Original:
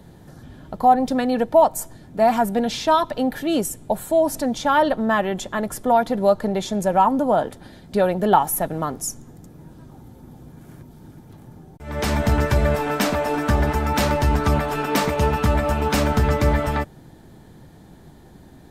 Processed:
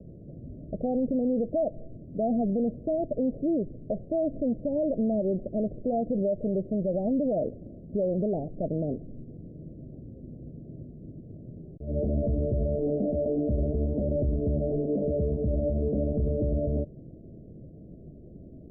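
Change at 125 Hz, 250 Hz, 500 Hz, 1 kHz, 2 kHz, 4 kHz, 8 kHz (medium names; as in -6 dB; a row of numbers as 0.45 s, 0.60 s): -6.5 dB, -4.5 dB, -7.0 dB, -22.0 dB, under -40 dB, under -40 dB, under -40 dB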